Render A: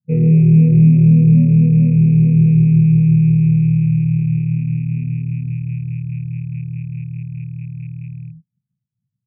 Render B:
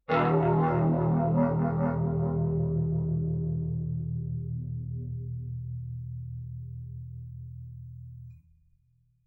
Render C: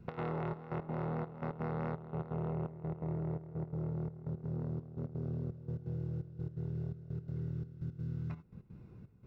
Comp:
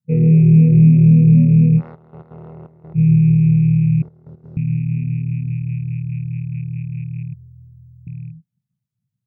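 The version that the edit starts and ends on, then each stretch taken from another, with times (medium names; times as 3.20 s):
A
1.79–2.97 s: from C, crossfade 0.06 s
4.02–4.57 s: from C
7.34–8.07 s: from B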